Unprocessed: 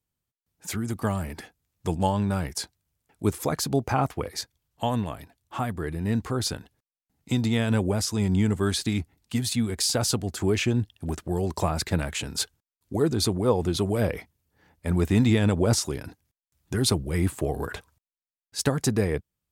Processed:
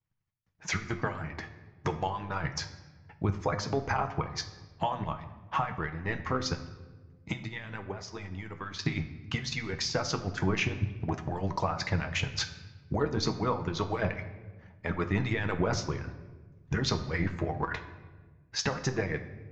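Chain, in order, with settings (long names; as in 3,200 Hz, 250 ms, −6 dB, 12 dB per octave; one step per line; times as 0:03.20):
Butterworth low-pass 6,500 Hz 72 dB per octave
low-shelf EQ 160 Hz +6.5 dB
mains-hum notches 60/120/180/240/300 Hz
harmonic and percussive parts rebalanced harmonic −17 dB
octave-band graphic EQ 125/250/1,000/2,000/4,000 Hz +9/−4/+6/+8/−4 dB
0:06.54–0:08.79: downward compressor 2.5 to 1, threshold −39 dBFS, peak gain reduction 11 dB
transient designer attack +9 dB, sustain −4 dB
brickwall limiter −14 dBFS, peak gain reduction 14 dB
flanger 0.27 Hz, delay 9.3 ms, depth 4.3 ms, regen +59%
rectangular room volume 980 cubic metres, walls mixed, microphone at 0.59 metres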